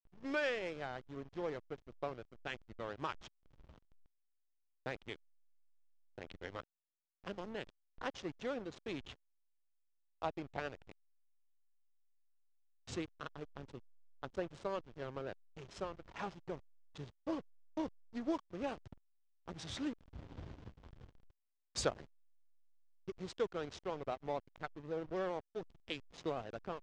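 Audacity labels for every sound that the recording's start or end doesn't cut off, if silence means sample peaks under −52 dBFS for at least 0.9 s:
4.860000	5.160000	sound
6.180000	9.130000	sound
10.220000	10.920000	sound
12.870000	22.050000	sound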